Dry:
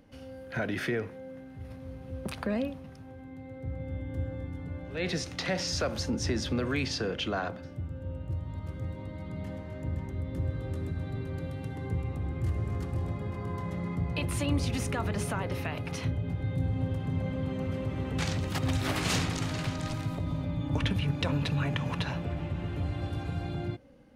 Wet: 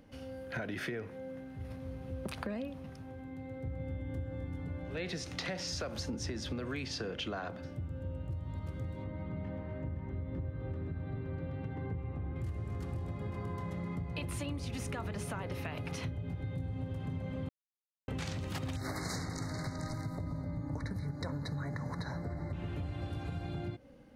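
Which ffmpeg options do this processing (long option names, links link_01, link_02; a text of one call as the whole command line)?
ffmpeg -i in.wav -filter_complex "[0:a]asettb=1/sr,asplit=3[link_01][link_02][link_03];[link_01]atrim=end=9.044[link_04];[link_02]atrim=start=9.04:end=12.36,asetpts=PTS-STARTPTS,afade=type=in:duration=0.004:curve=qsin,afade=type=out:start_time=3.316:duration=0.004:curve=qsin,lowpass=2300[link_05];[link_03]atrim=start=12.356[link_06];[link_04][link_05]acrossfade=duration=0.004:curve1=hsin:curve2=qsin[link_07];[link_07][link_06]acrossfade=duration=0.004:curve1=qsin:curve2=hsin,asettb=1/sr,asplit=3[link_08][link_09][link_10];[link_08]atrim=end=18.764[link_11];[link_09]atrim=start=18.76:end=22.53,asetpts=PTS-STARTPTS,afade=type=in:duration=0.004:curve=qsin,afade=type=out:start_time=3.766:duration=0.004:curve=qsin,asuperstop=centerf=2900:order=20:qfactor=1.8[link_12];[link_10]atrim=start=22.526[link_13];[link_11][link_12]acrossfade=duration=0.004:curve1=hsin:curve2=qsin[link_14];[link_14][link_13]acrossfade=duration=0.004:curve1=qsin:curve2=hsin,asplit=3[link_15][link_16][link_17];[link_15]atrim=end=17.49,asetpts=PTS-STARTPTS,afade=type=out:start_time=17.486:duration=0.004:curve=hsin[link_18];[link_16]atrim=start=17.49:end=18.08,asetpts=PTS-STARTPTS,volume=0[link_19];[link_17]atrim=start=18.08,asetpts=PTS-STARTPTS,afade=type=in:duration=0.004:curve=hsin[link_20];[link_18][link_19][link_20]concat=n=3:v=0:a=1,acompressor=threshold=-35dB:ratio=6" out.wav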